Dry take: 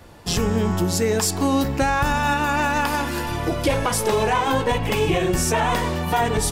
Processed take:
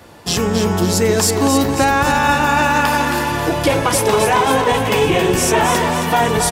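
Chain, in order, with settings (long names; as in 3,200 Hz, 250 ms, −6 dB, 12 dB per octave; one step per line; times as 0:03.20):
high-pass filter 150 Hz 6 dB per octave
on a send: repeating echo 271 ms, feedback 52%, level −6.5 dB
on the sum: level +5.5 dB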